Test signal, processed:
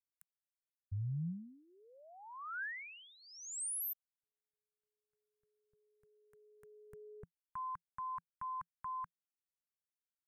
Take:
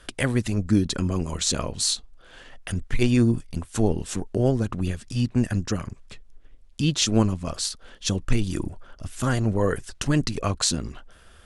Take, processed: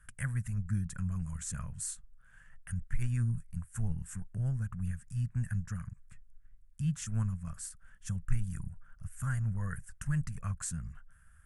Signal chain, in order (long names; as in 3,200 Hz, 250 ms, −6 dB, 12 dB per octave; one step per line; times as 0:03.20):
drawn EQ curve 170 Hz 0 dB, 320 Hz −30 dB, 790 Hz −18 dB, 1,600 Hz −2 dB, 4,000 Hz −27 dB, 8,400 Hz −2 dB
level −7 dB